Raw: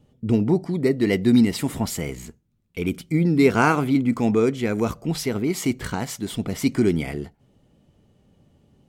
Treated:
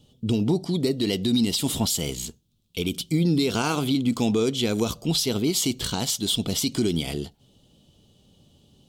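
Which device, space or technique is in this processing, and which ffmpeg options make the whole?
over-bright horn tweeter: -af "highshelf=f=2.6k:t=q:w=3:g=9,alimiter=limit=-13.5dB:level=0:latency=1:release=116"

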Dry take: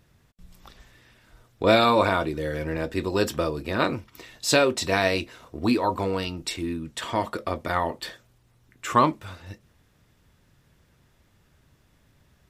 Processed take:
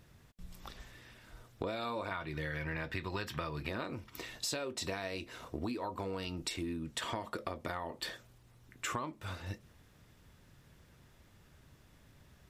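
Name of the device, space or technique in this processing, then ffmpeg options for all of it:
serial compression, leveller first: -filter_complex "[0:a]asettb=1/sr,asplit=3[a][b][c];[a]atrim=end=2.114[d];[b]atrim=start=2.11:end=3.69,asetpts=PTS-STARTPTS,afade=t=in:d=0.004:c=qsin,afade=t=out:st=1.576:d=0.004:c=qsin,equalizer=f=125:t=o:w=1:g=8,equalizer=f=250:t=o:w=1:g=-4,equalizer=f=500:t=o:w=1:g=-5,equalizer=f=1k:t=o:w=1:g=5,equalizer=f=2k:t=o:w=1:g=9,equalizer=f=4k:t=o:w=1:g=4,equalizer=f=8k:t=o:w=1:g=-5[e];[c]atrim=start=3.686[f];[d][e]acrossfade=d=0.004:c1=hsin:c2=qsin[g];[g][f]acrossfade=d=0.004:c1=qsin:c2=hsin,acompressor=threshold=-27dB:ratio=2,acompressor=threshold=-35dB:ratio=8"

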